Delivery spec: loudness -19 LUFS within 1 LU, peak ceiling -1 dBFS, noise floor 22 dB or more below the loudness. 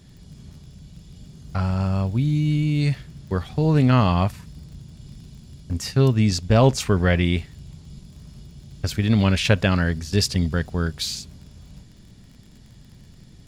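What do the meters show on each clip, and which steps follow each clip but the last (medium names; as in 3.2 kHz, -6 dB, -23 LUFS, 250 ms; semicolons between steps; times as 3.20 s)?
tick rate 37 per s; loudness -21.5 LUFS; peak level -4.5 dBFS; loudness target -19.0 LUFS
-> de-click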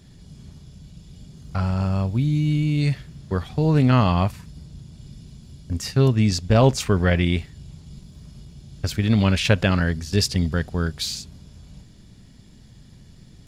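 tick rate 0.074 per s; loudness -21.5 LUFS; peak level -4.5 dBFS; loudness target -19.0 LUFS
-> trim +2.5 dB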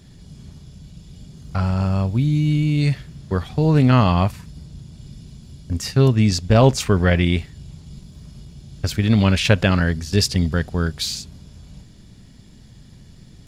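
loudness -19.0 LUFS; peak level -2.0 dBFS; noise floor -46 dBFS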